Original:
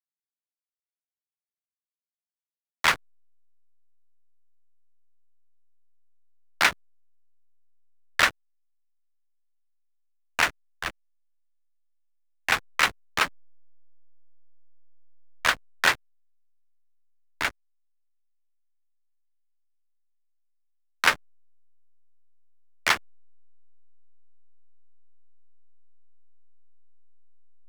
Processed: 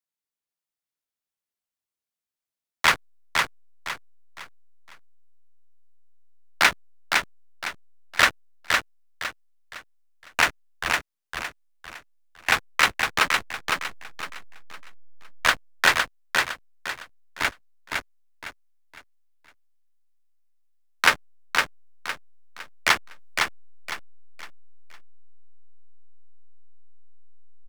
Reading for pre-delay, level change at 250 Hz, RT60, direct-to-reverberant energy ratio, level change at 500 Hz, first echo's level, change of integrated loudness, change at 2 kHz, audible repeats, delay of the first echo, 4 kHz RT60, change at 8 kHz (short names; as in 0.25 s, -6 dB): none, +4.0 dB, none, none, +4.0 dB, -4.0 dB, +0.5 dB, +4.0 dB, 4, 0.509 s, none, +4.0 dB